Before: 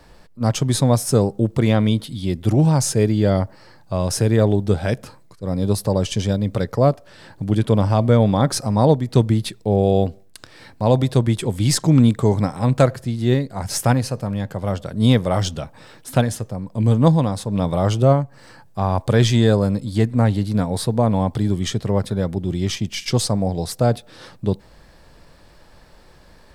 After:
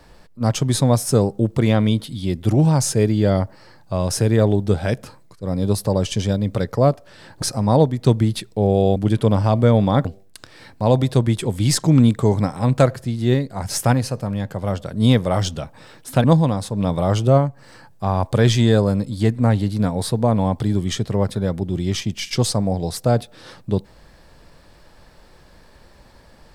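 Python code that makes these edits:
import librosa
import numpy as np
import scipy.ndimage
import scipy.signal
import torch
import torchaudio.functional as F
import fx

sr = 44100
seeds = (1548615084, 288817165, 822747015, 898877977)

y = fx.edit(x, sr, fx.move(start_s=7.42, length_s=1.09, to_s=10.05),
    fx.cut(start_s=16.24, length_s=0.75), tone=tone)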